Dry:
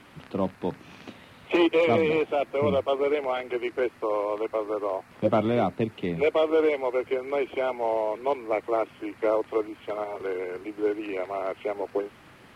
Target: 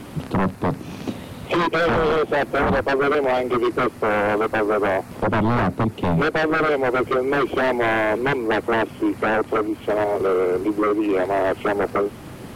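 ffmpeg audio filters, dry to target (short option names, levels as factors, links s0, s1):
-af "equalizer=f=2000:w=0.45:g=-12.5,alimiter=limit=0.0841:level=0:latency=1:release=465,aeval=exprs='0.0841*sin(PI/2*2.82*val(0)/0.0841)':c=same,volume=2"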